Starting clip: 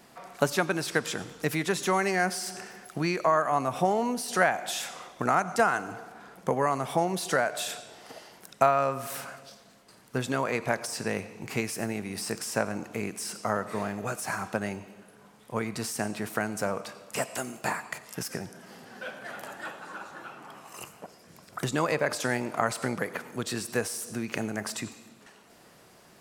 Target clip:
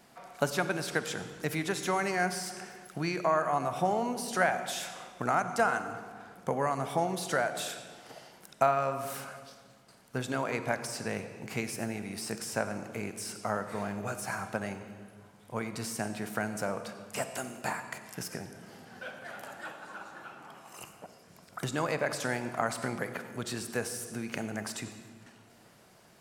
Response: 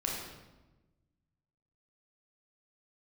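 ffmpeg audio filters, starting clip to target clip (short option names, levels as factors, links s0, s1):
-filter_complex "[0:a]asplit=2[s0][s1];[1:a]atrim=start_sample=2205,asetrate=25578,aresample=44100[s2];[s1][s2]afir=irnorm=-1:irlink=0,volume=0.158[s3];[s0][s3]amix=inputs=2:normalize=0,volume=0.531"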